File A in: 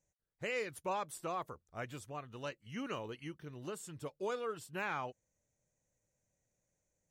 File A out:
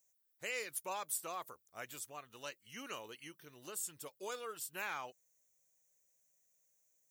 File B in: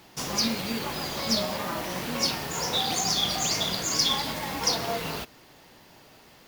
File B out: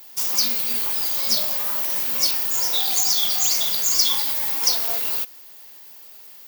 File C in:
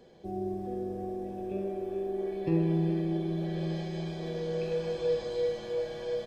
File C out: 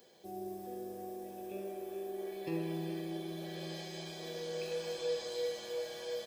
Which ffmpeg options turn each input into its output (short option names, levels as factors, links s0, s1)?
-af "aemphasis=mode=production:type=riaa,aeval=exprs='1.26*(cos(1*acos(clip(val(0)/1.26,-1,1)))-cos(1*PI/2))+0.0794*(cos(2*acos(clip(val(0)/1.26,-1,1)))-cos(2*PI/2))':c=same,volume=0.631"